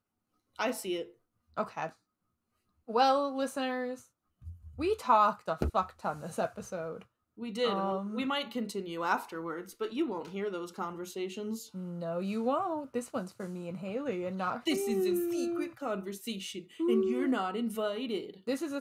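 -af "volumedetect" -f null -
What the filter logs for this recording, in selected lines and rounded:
mean_volume: -33.6 dB
max_volume: -12.7 dB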